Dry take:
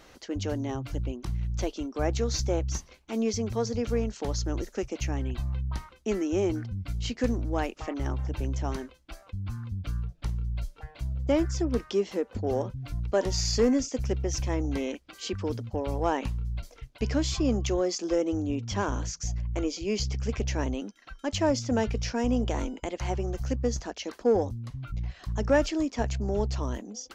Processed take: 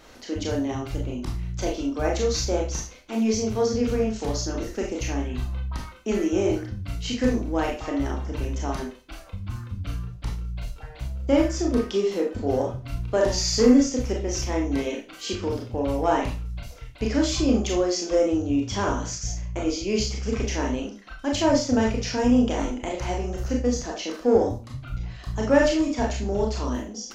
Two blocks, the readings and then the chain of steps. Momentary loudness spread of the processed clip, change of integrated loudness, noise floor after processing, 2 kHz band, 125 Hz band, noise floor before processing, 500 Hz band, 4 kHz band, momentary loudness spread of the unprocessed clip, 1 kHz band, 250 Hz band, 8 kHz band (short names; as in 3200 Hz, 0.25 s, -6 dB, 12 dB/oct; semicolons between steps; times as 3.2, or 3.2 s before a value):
13 LU, +4.5 dB, -44 dBFS, +5.0 dB, +0.5 dB, -55 dBFS, +5.0 dB, +5.0 dB, 9 LU, +5.0 dB, +6.0 dB, +5.0 dB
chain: wow and flutter 16 cents; Schroeder reverb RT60 0.33 s, combs from 25 ms, DRR -1 dB; gain +1.5 dB